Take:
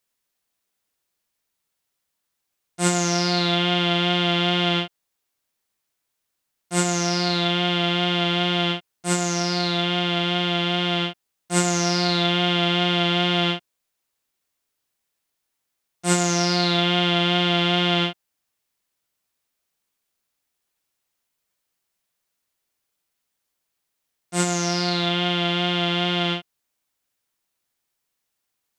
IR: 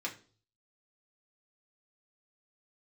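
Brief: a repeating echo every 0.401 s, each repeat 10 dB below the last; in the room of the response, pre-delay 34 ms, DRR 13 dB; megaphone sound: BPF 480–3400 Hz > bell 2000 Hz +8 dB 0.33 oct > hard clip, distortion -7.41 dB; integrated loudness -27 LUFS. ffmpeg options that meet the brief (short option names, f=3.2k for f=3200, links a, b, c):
-filter_complex "[0:a]aecho=1:1:401|802|1203|1604:0.316|0.101|0.0324|0.0104,asplit=2[a][b];[1:a]atrim=start_sample=2205,adelay=34[c];[b][c]afir=irnorm=-1:irlink=0,volume=-15.5dB[d];[a][d]amix=inputs=2:normalize=0,highpass=480,lowpass=3.4k,equalizer=f=2k:t=o:w=0.33:g=8,asoftclip=type=hard:threshold=-19dB,volume=-2dB"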